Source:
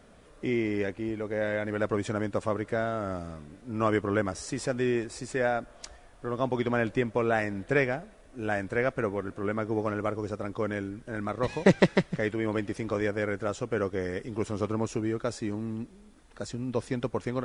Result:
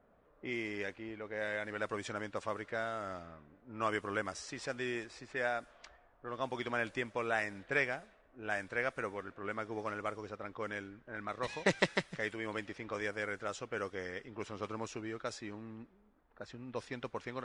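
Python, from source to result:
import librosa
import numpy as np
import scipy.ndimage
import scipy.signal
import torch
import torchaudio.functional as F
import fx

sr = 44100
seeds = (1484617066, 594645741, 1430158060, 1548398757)

y = fx.tilt_shelf(x, sr, db=-7.0, hz=660.0)
y = fx.env_lowpass(y, sr, base_hz=860.0, full_db=-24.5)
y = y * 10.0 ** (-8.5 / 20.0)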